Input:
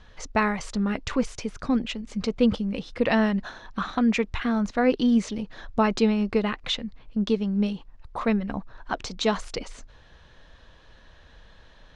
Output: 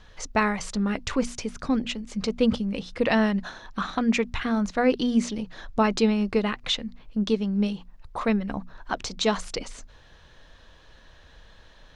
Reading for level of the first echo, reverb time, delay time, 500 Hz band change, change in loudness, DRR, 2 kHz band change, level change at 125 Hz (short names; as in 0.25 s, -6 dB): none, none, none, 0.0 dB, 0.0 dB, none, +0.5 dB, -0.5 dB